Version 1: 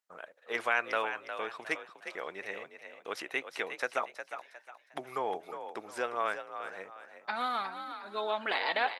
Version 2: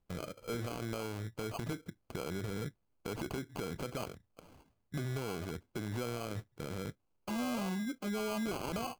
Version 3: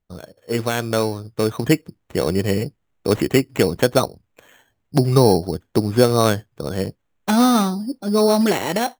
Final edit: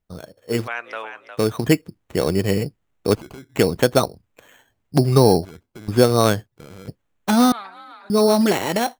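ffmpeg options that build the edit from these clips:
-filter_complex "[0:a]asplit=2[a][b];[1:a]asplit=3[c][d][e];[2:a]asplit=6[f][g][h][i][j][k];[f]atrim=end=0.68[l];[a]atrim=start=0.64:end=1.38[m];[g]atrim=start=1.34:end=3.152[n];[c]atrim=start=3.148:end=3.562[o];[h]atrim=start=3.558:end=5.452[p];[d]atrim=start=5.448:end=5.882[q];[i]atrim=start=5.878:end=6.472[r];[e]atrim=start=6.468:end=6.882[s];[j]atrim=start=6.878:end=7.522[t];[b]atrim=start=7.518:end=8.102[u];[k]atrim=start=8.098[v];[l][m]acrossfade=d=0.04:c1=tri:c2=tri[w];[w][n]acrossfade=d=0.04:c1=tri:c2=tri[x];[x][o]acrossfade=d=0.004:c1=hsin:c2=hsin[y];[y][p]acrossfade=d=0.004:c1=hsin:c2=hsin[z];[z][q]acrossfade=d=0.004:c1=hsin:c2=hsin[aa];[aa][r]acrossfade=d=0.004:c1=hsin:c2=hsin[ab];[ab][s]acrossfade=d=0.004:c1=hsin:c2=hsin[ac];[ac][t]acrossfade=d=0.004:c1=hsin:c2=hsin[ad];[ad][u]acrossfade=d=0.004:c1=hsin:c2=hsin[ae];[ae][v]acrossfade=d=0.004:c1=hsin:c2=hsin"

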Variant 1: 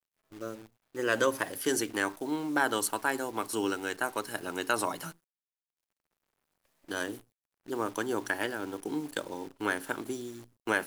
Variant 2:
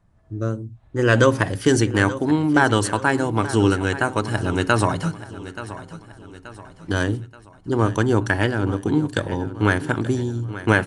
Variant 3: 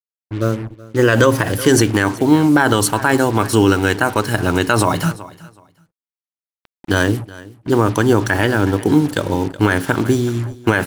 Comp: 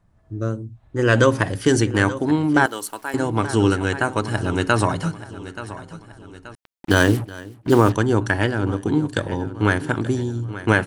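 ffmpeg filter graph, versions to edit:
-filter_complex "[1:a]asplit=3[a][b][c];[a]atrim=end=2.662[d];[0:a]atrim=start=2.658:end=3.142[e];[b]atrim=start=3.138:end=6.552[f];[2:a]atrim=start=6.548:end=7.922[g];[c]atrim=start=7.918[h];[d][e]acrossfade=d=0.004:c1=hsin:c2=hsin[i];[i][f]acrossfade=d=0.004:c1=hsin:c2=hsin[j];[j][g]acrossfade=d=0.004:c1=hsin:c2=hsin[k];[k][h]acrossfade=d=0.004:c1=hsin:c2=hsin"

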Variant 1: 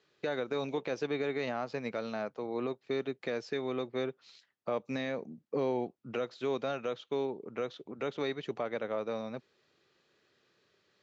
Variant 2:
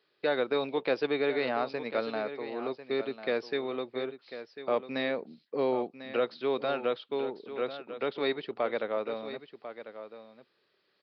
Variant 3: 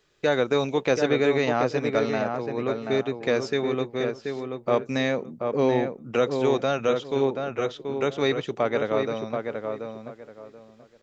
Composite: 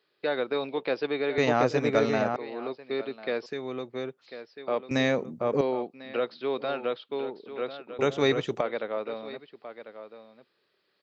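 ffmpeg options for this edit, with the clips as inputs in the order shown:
-filter_complex "[2:a]asplit=3[a][b][c];[1:a]asplit=5[d][e][f][g][h];[d]atrim=end=1.382[i];[a]atrim=start=1.378:end=2.362[j];[e]atrim=start=2.358:end=3.462[k];[0:a]atrim=start=3.458:end=4.262[l];[f]atrim=start=4.258:end=4.912[m];[b]atrim=start=4.908:end=5.612[n];[g]atrim=start=5.608:end=7.992[o];[c]atrim=start=7.988:end=8.612[p];[h]atrim=start=8.608[q];[i][j]acrossfade=d=0.004:c1=hsin:c2=hsin[r];[r][k]acrossfade=d=0.004:c1=hsin:c2=hsin[s];[s][l]acrossfade=d=0.004:c1=hsin:c2=hsin[t];[t][m]acrossfade=d=0.004:c1=hsin:c2=hsin[u];[u][n]acrossfade=d=0.004:c1=hsin:c2=hsin[v];[v][o]acrossfade=d=0.004:c1=hsin:c2=hsin[w];[w][p]acrossfade=d=0.004:c1=hsin:c2=hsin[x];[x][q]acrossfade=d=0.004:c1=hsin:c2=hsin"

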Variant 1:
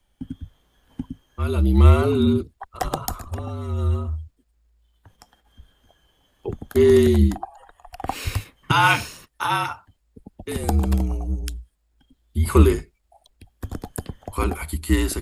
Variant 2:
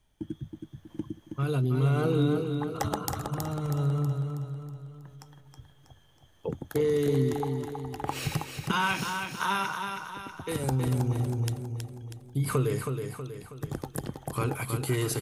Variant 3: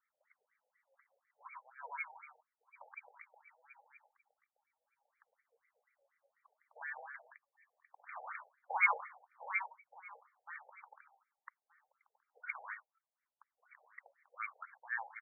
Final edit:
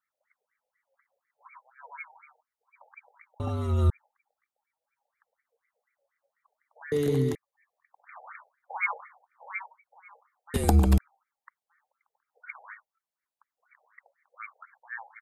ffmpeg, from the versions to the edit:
-filter_complex "[0:a]asplit=2[a][b];[2:a]asplit=4[c][d][e][f];[c]atrim=end=3.402[g];[a]atrim=start=3.398:end=3.902[h];[d]atrim=start=3.898:end=6.922[i];[1:a]atrim=start=6.918:end=7.352[j];[e]atrim=start=7.348:end=10.542[k];[b]atrim=start=10.538:end=10.982[l];[f]atrim=start=10.978[m];[g][h]acrossfade=d=0.004:c1=hsin:c2=hsin[n];[n][i]acrossfade=d=0.004:c1=hsin:c2=hsin[o];[o][j]acrossfade=d=0.004:c1=hsin:c2=hsin[p];[p][k]acrossfade=d=0.004:c1=hsin:c2=hsin[q];[q][l]acrossfade=d=0.004:c1=hsin:c2=hsin[r];[r][m]acrossfade=d=0.004:c1=hsin:c2=hsin"

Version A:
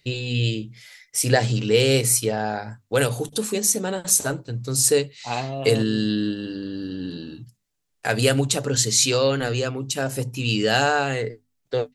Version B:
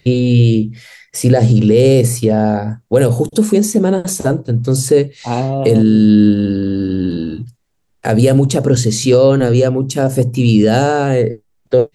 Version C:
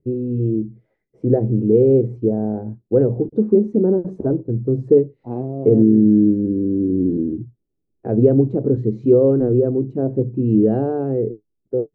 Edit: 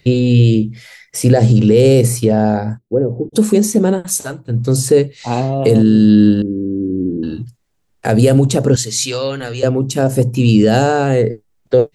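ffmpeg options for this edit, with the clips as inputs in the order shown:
-filter_complex "[2:a]asplit=2[a][b];[0:a]asplit=2[c][d];[1:a]asplit=5[e][f][g][h][i];[e]atrim=end=2.79[j];[a]atrim=start=2.77:end=3.35[k];[f]atrim=start=3.33:end=4.14[l];[c]atrim=start=3.9:end=4.6[m];[g]atrim=start=4.36:end=6.422[n];[b]atrim=start=6.418:end=7.232[o];[h]atrim=start=7.228:end=8.762[p];[d]atrim=start=8.758:end=9.632[q];[i]atrim=start=9.628[r];[j][k]acrossfade=d=0.02:c1=tri:c2=tri[s];[s][l]acrossfade=d=0.02:c1=tri:c2=tri[t];[t][m]acrossfade=d=0.24:c1=tri:c2=tri[u];[u][n]acrossfade=d=0.24:c1=tri:c2=tri[v];[v][o]acrossfade=d=0.004:c1=hsin:c2=hsin[w];[w][p]acrossfade=d=0.004:c1=hsin:c2=hsin[x];[x][q]acrossfade=d=0.004:c1=hsin:c2=hsin[y];[y][r]acrossfade=d=0.004:c1=hsin:c2=hsin"

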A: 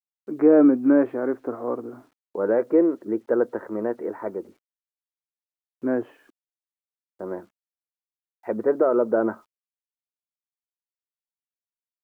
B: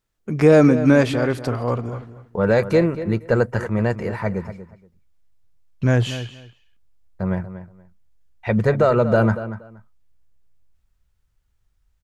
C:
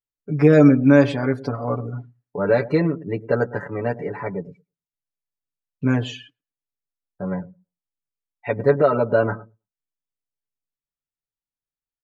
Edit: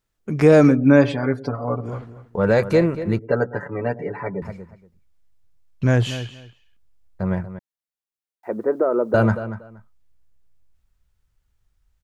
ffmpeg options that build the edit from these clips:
-filter_complex "[2:a]asplit=2[a][b];[1:a]asplit=4[c][d][e][f];[c]atrim=end=0.77[g];[a]atrim=start=0.67:end=1.9[h];[d]atrim=start=1.8:end=3.192[i];[b]atrim=start=3.188:end=4.422[j];[e]atrim=start=4.418:end=7.592[k];[0:a]atrim=start=7.588:end=9.142[l];[f]atrim=start=9.138[m];[g][h]acrossfade=d=0.1:c1=tri:c2=tri[n];[n][i]acrossfade=d=0.1:c1=tri:c2=tri[o];[o][j]acrossfade=d=0.004:c1=hsin:c2=hsin[p];[p][k]acrossfade=d=0.004:c1=hsin:c2=hsin[q];[q][l]acrossfade=d=0.004:c1=hsin:c2=hsin[r];[r][m]acrossfade=d=0.004:c1=hsin:c2=hsin"

